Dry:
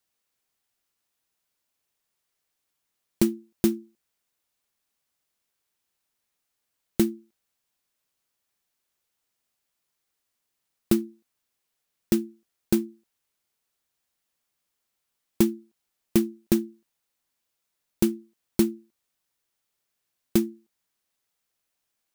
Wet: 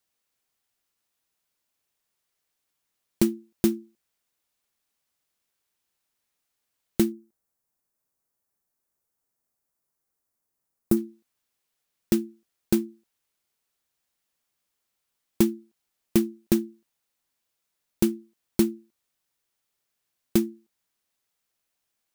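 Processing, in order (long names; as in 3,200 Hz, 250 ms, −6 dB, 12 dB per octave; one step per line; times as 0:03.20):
0:07.12–0:10.97: parametric band 3,100 Hz −14 dB 1.6 octaves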